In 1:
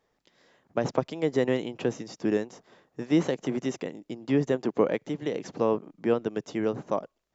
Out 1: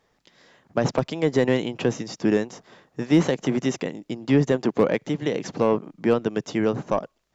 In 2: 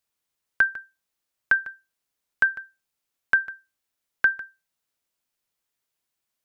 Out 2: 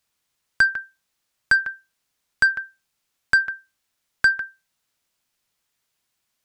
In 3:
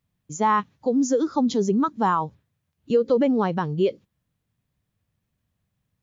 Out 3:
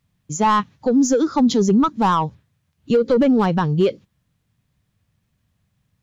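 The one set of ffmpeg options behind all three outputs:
-filter_complex "[0:a]asplit=2[a][b];[b]highpass=f=720:p=1,volume=13dB,asoftclip=type=tanh:threshold=-8.5dB[c];[a][c]amix=inputs=2:normalize=0,lowpass=f=5.3k:p=1,volume=-6dB,bass=f=250:g=13,treble=f=4k:g=3,volume=8.5dB,asoftclip=hard,volume=-8.5dB"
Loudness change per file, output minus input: +5.0, +3.0, +4.5 LU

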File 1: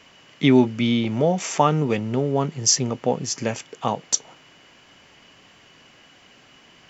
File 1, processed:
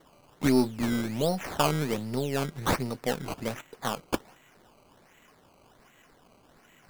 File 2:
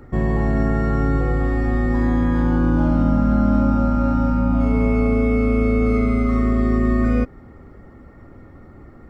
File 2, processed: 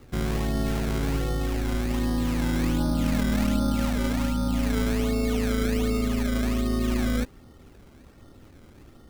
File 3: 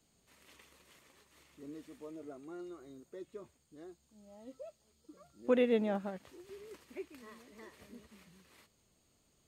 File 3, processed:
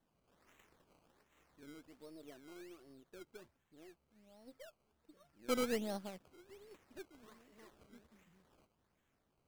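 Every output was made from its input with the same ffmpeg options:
-af "aeval=exprs='if(lt(val(0),0),0.708*val(0),val(0))':c=same,acrusher=samples=17:mix=1:aa=0.000001:lfo=1:lforange=17:lforate=1.3,volume=-6dB"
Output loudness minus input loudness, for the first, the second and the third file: -8.0, -7.0, -6.5 LU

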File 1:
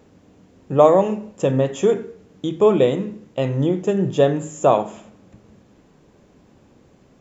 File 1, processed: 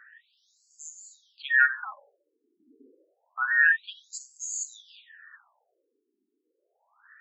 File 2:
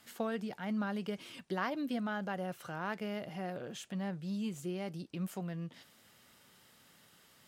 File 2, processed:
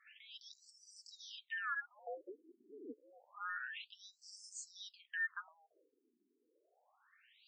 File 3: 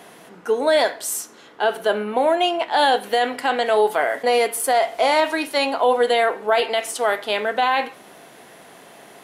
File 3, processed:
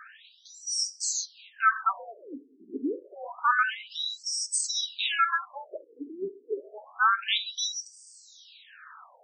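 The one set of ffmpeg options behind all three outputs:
-filter_complex "[0:a]afftfilt=real='real(if(between(b,1,1012),(2*floor((b-1)/92)+1)*92-b,b),0)':imag='imag(if(between(b,1,1012),(2*floor((b-1)/92)+1)*92-b,b),0)*if(between(b,1,1012),-1,1)':win_size=2048:overlap=0.75,aemphasis=mode=production:type=50fm,acrossover=split=620|4400[a][b][c];[c]asoftclip=type=tanh:threshold=-14.5dB[d];[a][b][d]amix=inputs=3:normalize=0,afftfilt=real='re*between(b*sr/1024,300*pow(6500/300,0.5+0.5*sin(2*PI*0.28*pts/sr))/1.41,300*pow(6500/300,0.5+0.5*sin(2*PI*0.28*pts/sr))*1.41)':imag='im*between(b*sr/1024,300*pow(6500/300,0.5+0.5*sin(2*PI*0.28*pts/sr))/1.41,300*pow(6500/300,0.5+0.5*sin(2*PI*0.28*pts/sr))*1.41)':win_size=1024:overlap=0.75,volume=-1.5dB"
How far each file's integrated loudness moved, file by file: -5.0, -6.0, -8.5 LU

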